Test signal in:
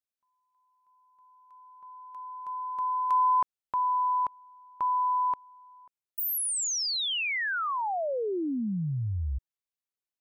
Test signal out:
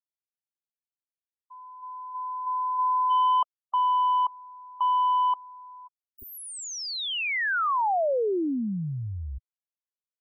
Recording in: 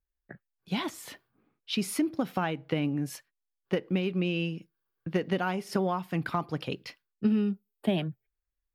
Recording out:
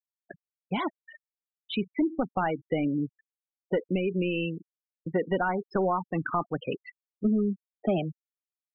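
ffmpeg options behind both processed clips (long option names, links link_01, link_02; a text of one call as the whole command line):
ffmpeg -i in.wav -filter_complex "[0:a]asplit=2[link_01][link_02];[link_02]highpass=frequency=720:poles=1,volume=17dB,asoftclip=type=tanh:threshold=-14.5dB[link_03];[link_01][link_03]amix=inputs=2:normalize=0,lowpass=frequency=1200:poles=1,volume=-6dB,afftfilt=real='re*gte(hypot(re,im),0.0447)':imag='im*gte(hypot(re,im),0.0447)':win_size=1024:overlap=0.75" out.wav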